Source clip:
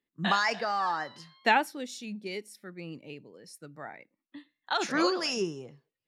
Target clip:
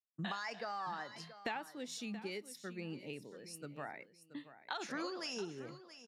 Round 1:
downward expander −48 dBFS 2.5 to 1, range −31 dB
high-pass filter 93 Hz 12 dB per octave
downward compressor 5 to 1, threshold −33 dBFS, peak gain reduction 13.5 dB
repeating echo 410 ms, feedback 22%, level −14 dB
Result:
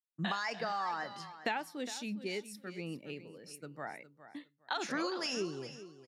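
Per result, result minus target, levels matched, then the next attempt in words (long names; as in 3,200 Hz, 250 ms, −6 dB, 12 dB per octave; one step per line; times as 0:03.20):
echo 268 ms early; downward compressor: peak gain reduction −5.5 dB
downward expander −48 dBFS 2.5 to 1, range −31 dB
high-pass filter 93 Hz 12 dB per octave
downward compressor 5 to 1, threshold −33 dBFS, peak gain reduction 13.5 dB
repeating echo 678 ms, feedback 22%, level −14 dB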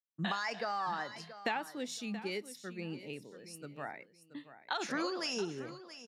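downward compressor: peak gain reduction −5.5 dB
downward expander −48 dBFS 2.5 to 1, range −31 dB
high-pass filter 93 Hz 12 dB per octave
downward compressor 5 to 1, threshold −40 dBFS, peak gain reduction 19 dB
repeating echo 678 ms, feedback 22%, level −14 dB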